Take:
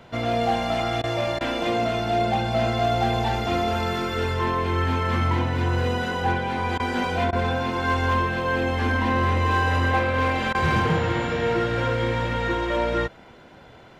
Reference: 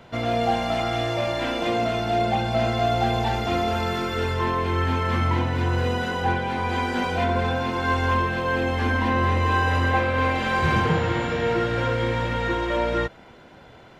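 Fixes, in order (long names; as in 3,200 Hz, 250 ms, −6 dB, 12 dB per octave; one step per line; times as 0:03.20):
clipped peaks rebuilt −14.5 dBFS
repair the gap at 0:01.02/0:01.39/0:06.78/0:07.31/0:10.53, 16 ms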